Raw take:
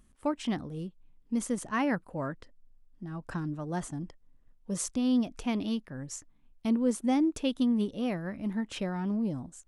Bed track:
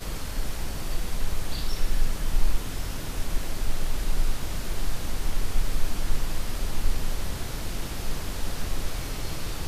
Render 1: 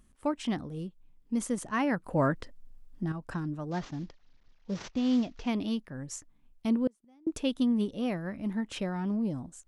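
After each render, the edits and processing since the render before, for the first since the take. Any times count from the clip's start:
0:02.04–0:03.12: clip gain +8.5 dB
0:03.71–0:05.48: variable-slope delta modulation 32 kbit/s
0:06.87–0:07.27: gate with flip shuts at −29 dBFS, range −34 dB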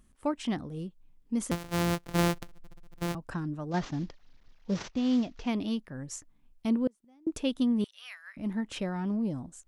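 0:01.51–0:03.15: samples sorted by size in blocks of 256 samples
0:03.74–0:04.83: clip gain +4 dB
0:07.84–0:08.37: high-pass filter 1,500 Hz 24 dB per octave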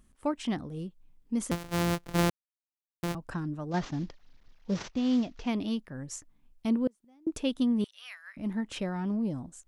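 0:02.30–0:03.03: silence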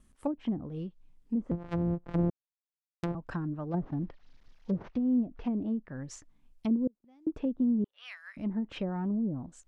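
noise gate with hold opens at −58 dBFS
treble cut that deepens with the level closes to 410 Hz, closed at −26.5 dBFS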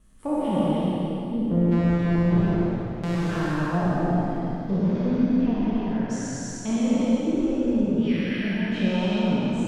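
peak hold with a decay on every bin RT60 2.93 s
reverb whose tail is shaped and stops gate 420 ms flat, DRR −5.5 dB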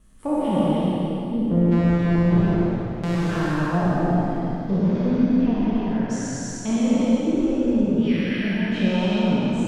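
level +2.5 dB

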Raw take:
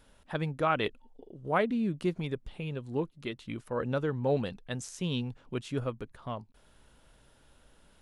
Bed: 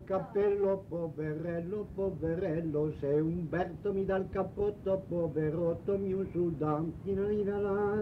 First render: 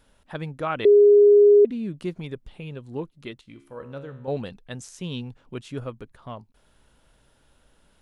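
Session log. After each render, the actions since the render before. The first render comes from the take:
0:00.85–0:01.65: beep over 411 Hz −10 dBFS
0:03.41–0:04.28: tuned comb filter 69 Hz, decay 0.71 s, mix 70%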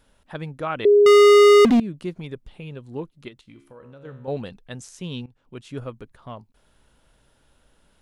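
0:01.06–0:01.80: leveller curve on the samples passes 5
0:03.28–0:04.05: downward compressor, threshold −41 dBFS
0:05.26–0:05.76: fade in, from −18 dB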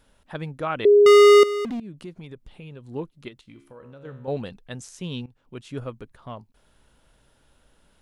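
0:01.43–0:02.87: downward compressor 2 to 1, threshold −40 dBFS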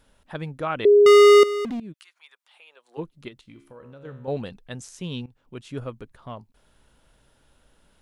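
0:01.92–0:02.97: high-pass filter 1,500 Hz → 510 Hz 24 dB per octave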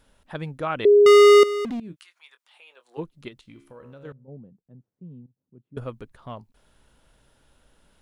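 0:01.85–0:03.00: double-tracking delay 23 ms −10.5 dB
0:04.12–0:05.77: four-pole ladder band-pass 190 Hz, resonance 30%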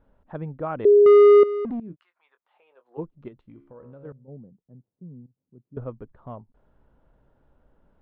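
low-pass filter 1,000 Hz 12 dB per octave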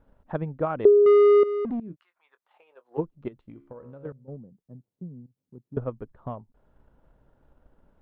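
brickwall limiter −13.5 dBFS, peak gain reduction 4.5 dB
transient designer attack +6 dB, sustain −1 dB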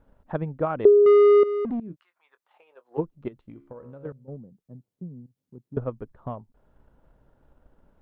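level +1 dB

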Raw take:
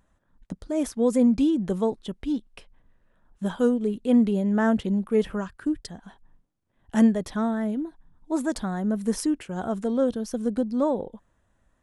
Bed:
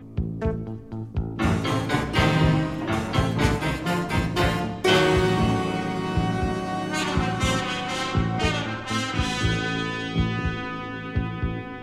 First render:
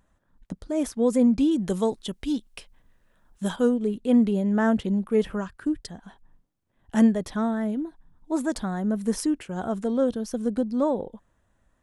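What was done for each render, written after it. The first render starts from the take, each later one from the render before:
0:01.51–0:03.56: high-shelf EQ 2,900 Hz +11 dB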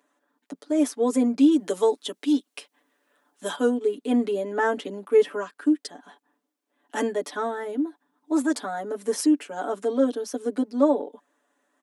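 Butterworth high-pass 240 Hz 48 dB per octave
comb filter 6.9 ms, depth 95%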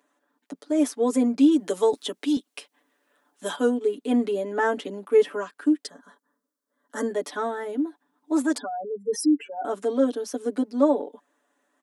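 0:01.93–0:02.37: multiband upward and downward compressor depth 40%
0:05.89–0:07.11: phaser with its sweep stopped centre 520 Hz, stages 8
0:08.58–0:09.65: expanding power law on the bin magnitudes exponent 2.9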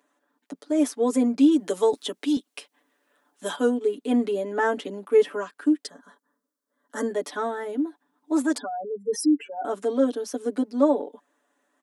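no processing that can be heard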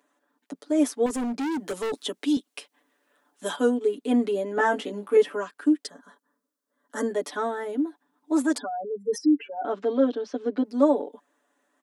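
0:01.06–0:01.92: gain into a clipping stage and back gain 26 dB
0:04.55–0:05.17: double-tracking delay 19 ms −3.5 dB
0:09.18–0:10.65: low-pass filter 4,400 Hz 24 dB per octave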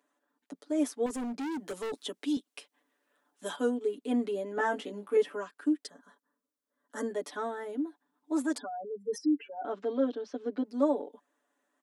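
level −7 dB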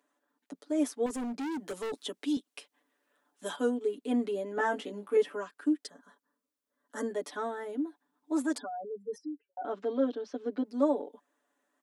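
0:08.77–0:09.57: fade out and dull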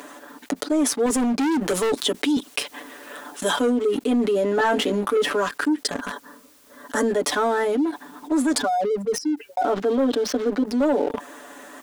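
leveller curve on the samples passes 2
envelope flattener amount 70%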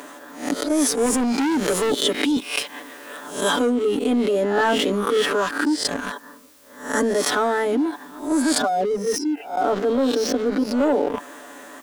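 peak hold with a rise ahead of every peak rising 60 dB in 0.46 s

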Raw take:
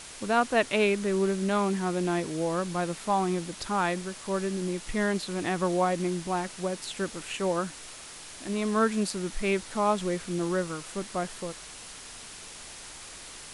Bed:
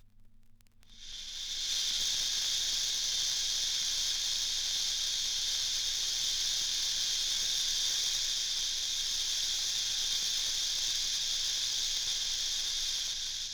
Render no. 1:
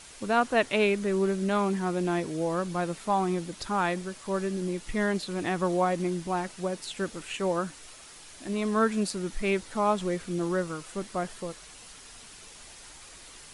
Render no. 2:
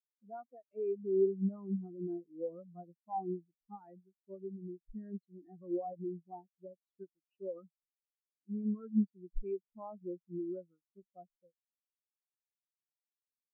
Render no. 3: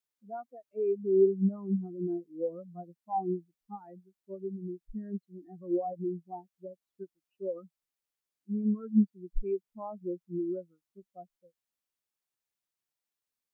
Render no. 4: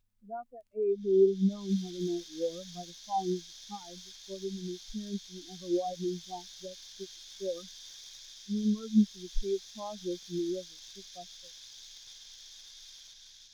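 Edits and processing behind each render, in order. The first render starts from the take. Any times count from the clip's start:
broadband denoise 6 dB, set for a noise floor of −45 dBFS
brickwall limiter −20.5 dBFS, peak gain reduction 10 dB; every bin expanded away from the loudest bin 4 to 1
level +6 dB
mix in bed −17.5 dB

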